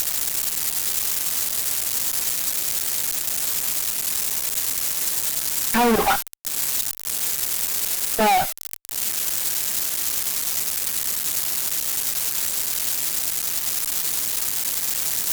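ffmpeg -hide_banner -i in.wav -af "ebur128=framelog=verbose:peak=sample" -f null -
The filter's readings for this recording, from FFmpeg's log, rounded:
Integrated loudness:
  I:         -20.7 LUFS
  Threshold: -30.7 LUFS
Loudness range:
  LRA:         0.8 LU
  Threshold: -40.7 LUFS
  LRA low:   -21.1 LUFS
  LRA high:  -20.2 LUFS
Sample peak:
  Peak:      -10.6 dBFS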